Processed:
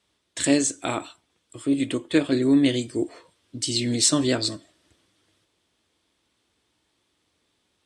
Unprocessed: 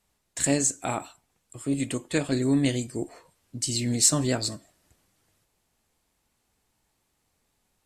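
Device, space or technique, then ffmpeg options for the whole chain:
car door speaker: -filter_complex "[0:a]asettb=1/sr,asplit=3[a][b][c];[a]atrim=end=1.664[d];[b]atrim=start=1.66:end=2.74,asetpts=PTS-STARTPTS,afade=t=in:d=0.004:c=qsin,afade=t=out:st=1.076:d=0.004:c=qsin,equalizer=f=6.1k:t=o:w=1.7:g=-5.5[e];[c]atrim=start=2.736[f];[d][e]acrossfade=d=0.004:c1=hsin:c2=qsin[g];[g][f]acrossfade=d=0.004:c1=qsin:c2=hsin,highpass=88,equalizer=f=140:t=q:w=4:g=-7,equalizer=f=210:t=q:w=4:g=-4,equalizer=f=320:t=q:w=4:g=6,equalizer=f=790:t=q:w=4:g=-6,equalizer=f=3.4k:t=q:w=4:g=8,equalizer=f=7.1k:t=q:w=4:g=-7,lowpass=f=9.1k:w=0.5412,lowpass=f=9.1k:w=1.3066,volume=3.5dB"

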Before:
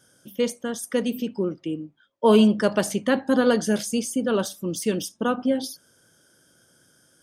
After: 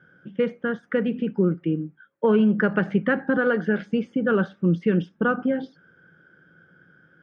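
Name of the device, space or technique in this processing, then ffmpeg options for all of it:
bass amplifier: -filter_complex "[0:a]acompressor=threshold=-20dB:ratio=4,highpass=62,equalizer=f=110:t=q:w=4:g=-6,equalizer=f=170:t=q:w=4:g=9,equalizer=f=250:t=q:w=4:g=-5,equalizer=f=640:t=q:w=4:g=-9,equalizer=f=990:t=q:w=4:g=-8,equalizer=f=1.5k:t=q:w=4:g=7,lowpass=f=2.2k:w=0.5412,lowpass=f=2.2k:w=1.3066,asettb=1/sr,asplit=3[a][b][c];[a]atrim=end=3.374[d];[b]atrim=start=3.37:end=3.82,asetpts=PTS-STARTPTS,afade=t=in:d=0.004:c=qsin,afade=t=out:st=0.446:d=0.004:c=qsin,highpass=220[e];[c]atrim=start=3.816[f];[d][e]acrossfade=d=0.004:c1=hsin:c2=qsin[g];[g][f]acrossfade=d=0.004:c1=qsin:c2=hsin,volume=5dB"

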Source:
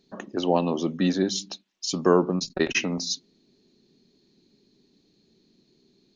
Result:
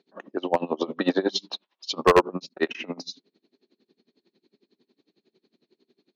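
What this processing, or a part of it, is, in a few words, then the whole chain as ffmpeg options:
helicopter radio: -filter_complex "[0:a]asplit=3[a][b][c];[a]afade=t=out:st=0.8:d=0.02[d];[b]equalizer=f=500:t=o:w=1:g=7,equalizer=f=1k:t=o:w=1:g=12,equalizer=f=4k:t=o:w=1:g=9,afade=t=in:st=0.8:d=0.02,afade=t=out:st=2.2:d=0.02[e];[c]afade=t=in:st=2.2:d=0.02[f];[d][e][f]amix=inputs=3:normalize=0,highpass=320,lowpass=3k,aeval=exprs='val(0)*pow(10,-25*(0.5-0.5*cos(2*PI*11*n/s))/20)':c=same,asoftclip=type=hard:threshold=-16dB,volume=6dB"

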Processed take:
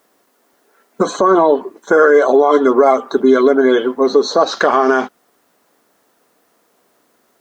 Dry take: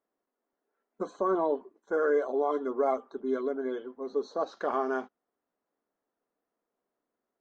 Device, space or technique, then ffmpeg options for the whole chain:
mastering chain: -af "highpass=42,equalizer=f=150:t=o:w=0.7:g=3.5,acompressor=threshold=-32dB:ratio=2.5,tiltshelf=f=1.4k:g=-4.5,alimiter=level_in=29dB:limit=-1dB:release=50:level=0:latency=1,volume=-1dB"

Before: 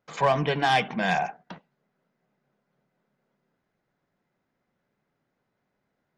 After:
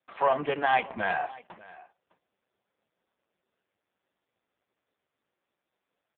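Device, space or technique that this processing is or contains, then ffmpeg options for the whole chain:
satellite phone: -af "highpass=310,lowpass=3.2k,aecho=1:1:599:0.0891" -ar 8000 -c:a libopencore_amrnb -b:a 4750

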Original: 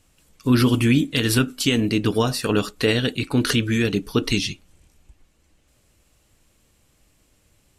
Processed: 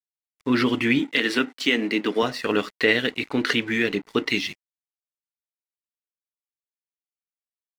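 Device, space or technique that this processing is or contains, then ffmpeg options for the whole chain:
pocket radio on a weak battery: -filter_complex "[0:a]highpass=260,lowpass=4.1k,aeval=exprs='sgn(val(0))*max(abs(val(0))-0.00668,0)':c=same,equalizer=f=2k:t=o:w=0.3:g=10.5,asettb=1/sr,asplit=3[a][b][c];[a]atrim=end=0.994[d];[b]atrim=start=0.99:end=2.23,asetpts=PTS-STARTPTS,afade=t=in:d=0.004:c=qsin,afade=t=out:st=1.236:d=0.004:c=qsin,highpass=f=180:w=0.5412,highpass=f=180:w=1.3066[e];[c]atrim=start=2.226[f];[d][e]acrossfade=d=0.004:c1=hsin:c2=qsin[g];[g][f]acrossfade=d=0.004:c1=qsin:c2=hsin"

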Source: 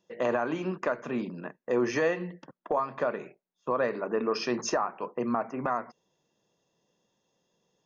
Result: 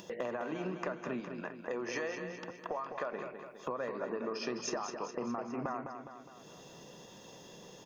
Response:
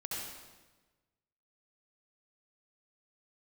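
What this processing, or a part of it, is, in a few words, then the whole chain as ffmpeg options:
upward and downward compression: -filter_complex "[0:a]asettb=1/sr,asplit=3[a][b][c];[a]atrim=end=1.204[d];[b]atrim=start=1.2:end=3.13,asetpts=PTS-STARTPTS,afade=t=in:d=0.004:c=qsin,afade=t=out:st=1.926:d=0.004:c=qsin,equalizer=f=140:w=0.35:g=-8.5[e];[c]atrim=start=3.126[f];[d][e]acrossfade=d=0.004:c1=hsin:c2=qsin[g];[g][f]acrossfade=d=0.004:c1=qsin:c2=hsin,acompressor=mode=upward:threshold=-35dB:ratio=2.5,acompressor=threshold=-35dB:ratio=6,aecho=1:1:206|412|618|824|1030|1236:0.422|0.223|0.118|0.0628|0.0333|0.0176"

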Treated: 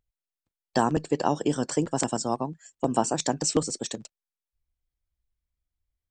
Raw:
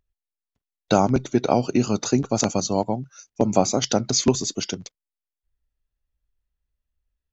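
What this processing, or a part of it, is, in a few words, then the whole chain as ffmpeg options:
nightcore: -af "asetrate=52920,aresample=44100,volume=-5dB"

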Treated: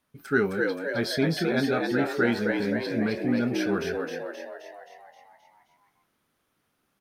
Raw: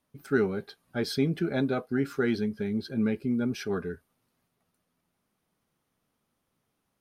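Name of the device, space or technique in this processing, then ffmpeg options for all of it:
presence and air boost: -filter_complex "[0:a]equalizer=f=1.5k:t=o:w=0.87:g=5,equalizer=f=3.1k:t=o:w=1.7:g=3,highshelf=f=11k:g=3,asplit=2[a][b];[b]adelay=25,volume=-11.5dB[c];[a][c]amix=inputs=2:normalize=0,asplit=9[d][e][f][g][h][i][j][k][l];[e]adelay=263,afreqshift=76,volume=-3.5dB[m];[f]adelay=526,afreqshift=152,volume=-8.5dB[n];[g]adelay=789,afreqshift=228,volume=-13.6dB[o];[h]adelay=1052,afreqshift=304,volume=-18.6dB[p];[i]adelay=1315,afreqshift=380,volume=-23.6dB[q];[j]adelay=1578,afreqshift=456,volume=-28.7dB[r];[k]adelay=1841,afreqshift=532,volume=-33.7dB[s];[l]adelay=2104,afreqshift=608,volume=-38.8dB[t];[d][m][n][o][p][q][r][s][t]amix=inputs=9:normalize=0"

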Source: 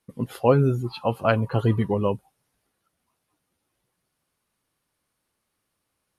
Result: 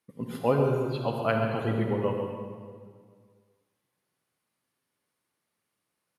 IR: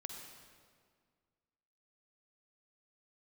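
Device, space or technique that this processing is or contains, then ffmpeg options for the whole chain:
PA in a hall: -filter_complex "[0:a]highpass=120,equalizer=f=2k:t=o:w=0.5:g=3.5,aecho=1:1:135:0.355[a];[1:a]atrim=start_sample=2205[b];[a][b]afir=irnorm=-1:irlink=0,volume=-2dB"

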